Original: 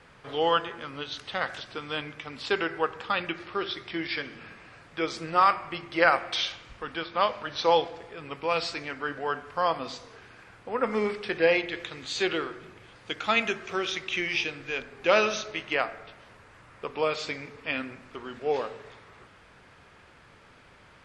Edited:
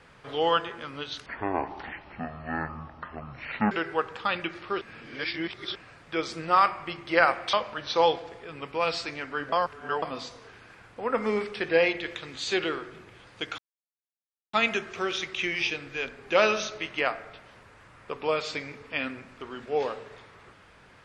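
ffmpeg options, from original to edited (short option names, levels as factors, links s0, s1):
-filter_complex "[0:a]asplit=9[s0][s1][s2][s3][s4][s5][s6][s7][s8];[s0]atrim=end=1.264[s9];[s1]atrim=start=1.26:end=2.56,asetpts=PTS-STARTPTS,asetrate=23373,aresample=44100[s10];[s2]atrim=start=2.556:end=3.662[s11];[s3]atrim=start=3.658:end=4.602,asetpts=PTS-STARTPTS,areverse[s12];[s4]atrim=start=4.598:end=6.382[s13];[s5]atrim=start=7.218:end=9.212[s14];[s6]atrim=start=9.208:end=9.712,asetpts=PTS-STARTPTS,areverse[s15];[s7]atrim=start=9.708:end=13.27,asetpts=PTS-STARTPTS,afade=t=out:st=3.558:d=0.004:c=hsin,apad=pad_dur=0.95[s16];[s8]atrim=start=13.27,asetpts=PTS-STARTPTS,afade=t=in:d=0.004:c=hsin[s17];[s9][s10]acrossfade=d=0.004:c1=hsin:c2=hsin[s18];[s18][s11]acrossfade=d=0.004:c1=hsin:c2=hsin[s19];[s19][s12]acrossfade=d=0.004:c1=hsin:c2=hsin[s20];[s20][s13]acrossfade=d=0.004:c1=hsin:c2=hsin[s21];[s21][s14]acrossfade=d=0.004:c1=hsin:c2=hsin[s22];[s22][s15]acrossfade=d=0.004:c1=hsin:c2=hsin[s23];[s16][s17]concat=n=2:v=0:a=1[s24];[s23][s24]acrossfade=d=0.004:c1=hsin:c2=hsin"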